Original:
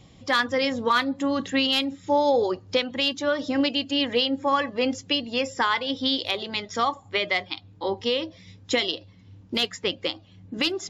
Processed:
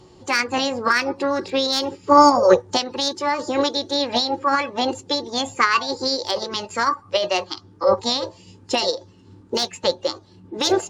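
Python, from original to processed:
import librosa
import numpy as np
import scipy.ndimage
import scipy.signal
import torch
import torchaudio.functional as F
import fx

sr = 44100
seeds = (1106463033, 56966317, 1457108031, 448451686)

y = fx.small_body(x, sr, hz=(370.0, 880.0), ring_ms=90, db=16)
y = fx.formant_shift(y, sr, semitones=5)
y = y * 10.0 ** (1.0 / 20.0)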